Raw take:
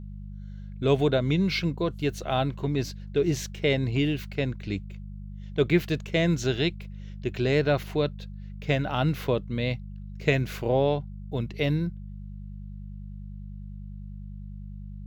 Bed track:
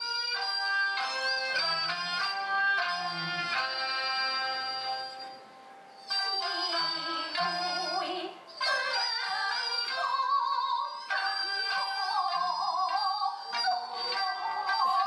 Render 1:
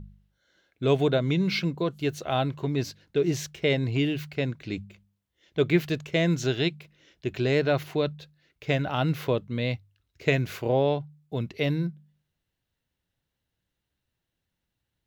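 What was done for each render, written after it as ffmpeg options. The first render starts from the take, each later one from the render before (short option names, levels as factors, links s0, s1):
-af "bandreject=f=50:t=h:w=4,bandreject=f=100:t=h:w=4,bandreject=f=150:t=h:w=4,bandreject=f=200:t=h:w=4"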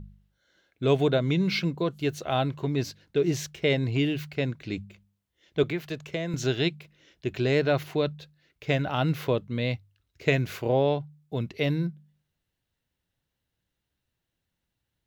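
-filter_complex "[0:a]asettb=1/sr,asplit=3[s0][s1][s2];[s0]atrim=end=5.634[s3];[s1]atrim=start=5.63:end=6.34,asetpts=PTS-STARTPTS,afade=t=in:d=0.004:c=qsin,afade=t=out:st=0.706:d=0.004:c=qsin,acrossover=split=100|520|1200[s4][s5][s6][s7];[s4]acompressor=threshold=0.002:ratio=3[s8];[s5]acompressor=threshold=0.0178:ratio=3[s9];[s6]acompressor=threshold=0.0158:ratio=3[s10];[s7]acompressor=threshold=0.0112:ratio=3[s11];[s8][s9][s10][s11]amix=inputs=4:normalize=0[s12];[s2]atrim=start=6.336[s13];[s3][s12]acrossfade=d=0.004:c1=hsin:c2=qsin[s14];[s14][s13]acrossfade=d=0.004:c1=qsin:c2=hsin"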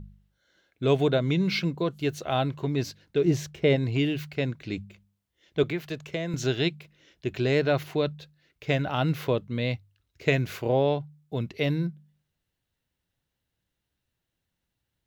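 -filter_complex "[0:a]asettb=1/sr,asplit=3[s0][s1][s2];[s0]atrim=end=3.254[s3];[s1]atrim=start=3.25:end=3.76,asetpts=PTS-STARTPTS,afade=t=in:d=0.004:c=qsin,afade=t=out:st=0.506:d=0.004:c=qsin,tiltshelf=f=1200:g=4[s4];[s2]atrim=start=3.756[s5];[s3][s4]acrossfade=d=0.004:c1=hsin:c2=qsin[s6];[s6][s5]acrossfade=d=0.004:c1=qsin:c2=hsin"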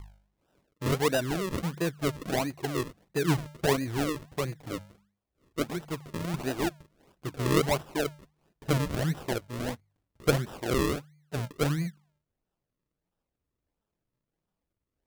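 -af "flanger=delay=2.5:depth=4.6:regen=13:speed=0.74:shape=sinusoidal,acrusher=samples=40:mix=1:aa=0.000001:lfo=1:lforange=40:lforate=1.5"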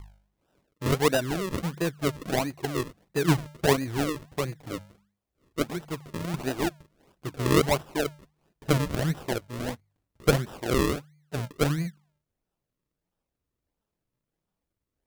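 -af "aeval=exprs='0.251*(cos(1*acos(clip(val(0)/0.251,-1,1)))-cos(1*PI/2))+0.0562*(cos(3*acos(clip(val(0)/0.251,-1,1)))-cos(3*PI/2))':c=same,aeval=exprs='0.316*sin(PI/2*2*val(0)/0.316)':c=same"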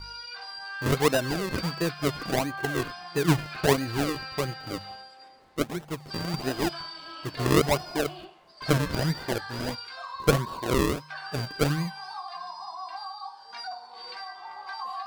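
-filter_complex "[1:a]volume=0.376[s0];[0:a][s0]amix=inputs=2:normalize=0"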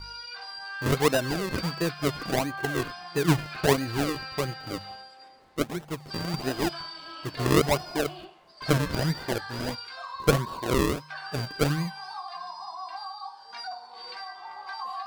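-af anull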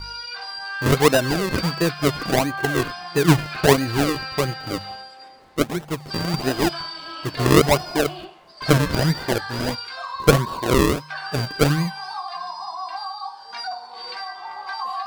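-af "volume=2.24"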